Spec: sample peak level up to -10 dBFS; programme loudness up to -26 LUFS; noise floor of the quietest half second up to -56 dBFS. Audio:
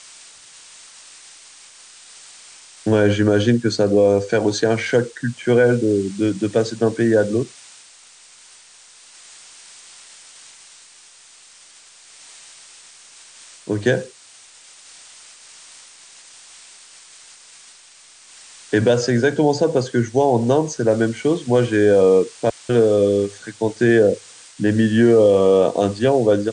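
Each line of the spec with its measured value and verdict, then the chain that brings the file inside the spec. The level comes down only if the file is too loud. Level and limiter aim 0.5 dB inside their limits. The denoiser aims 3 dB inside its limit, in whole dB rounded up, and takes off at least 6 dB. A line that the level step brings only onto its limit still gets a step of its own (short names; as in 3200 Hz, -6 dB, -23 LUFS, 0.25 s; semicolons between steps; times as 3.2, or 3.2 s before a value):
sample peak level -5.0 dBFS: fail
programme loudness -17.5 LUFS: fail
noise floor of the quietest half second -47 dBFS: fail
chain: denoiser 6 dB, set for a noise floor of -47 dBFS; gain -9 dB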